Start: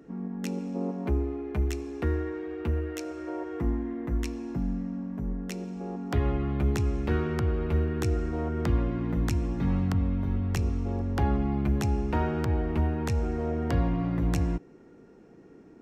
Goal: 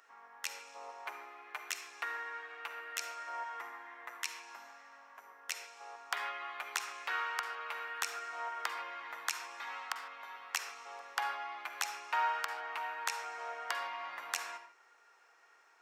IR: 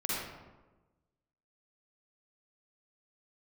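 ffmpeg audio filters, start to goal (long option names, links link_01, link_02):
-filter_complex "[0:a]highpass=frequency=980:width=0.5412,highpass=frequency=980:width=1.3066,asplit=2[link_01][link_02];[1:a]atrim=start_sample=2205,afade=type=out:start_time=0.21:duration=0.01,atrim=end_sample=9702[link_03];[link_02][link_03]afir=irnorm=-1:irlink=0,volume=-10dB[link_04];[link_01][link_04]amix=inputs=2:normalize=0,volume=1.5dB"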